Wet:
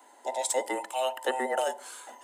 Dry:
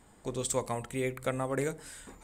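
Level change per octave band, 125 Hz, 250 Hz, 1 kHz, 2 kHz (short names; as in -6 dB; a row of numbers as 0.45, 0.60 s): under -30 dB, -5.0 dB, +8.5 dB, +4.5 dB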